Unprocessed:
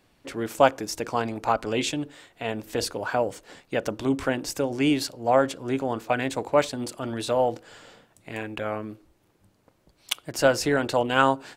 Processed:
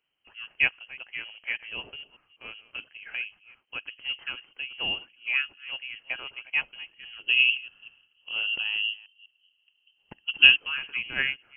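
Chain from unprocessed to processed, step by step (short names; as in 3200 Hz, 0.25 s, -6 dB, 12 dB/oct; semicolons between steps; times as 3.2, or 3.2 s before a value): reverse delay 0.197 s, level -13.5 dB; 7.26–10.56 resonant low shelf 530 Hz +11 dB, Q 3; inverted band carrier 3100 Hz; upward expander 1.5:1, over -38 dBFS; gain -2.5 dB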